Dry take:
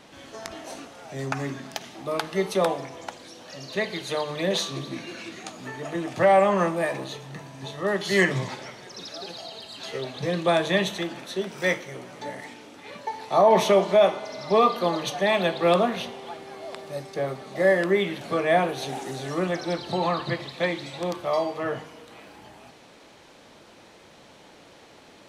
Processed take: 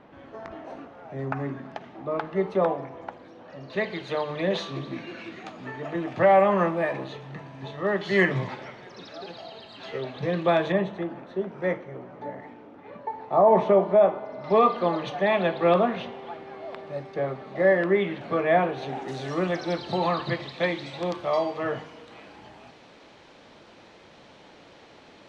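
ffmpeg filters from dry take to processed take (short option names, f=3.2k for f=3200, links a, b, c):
-af "asetnsamples=n=441:p=0,asendcmd='3.7 lowpass f 2700;10.72 lowpass f 1200;14.44 lowpass f 2400;19.08 lowpass f 4800',lowpass=1.5k"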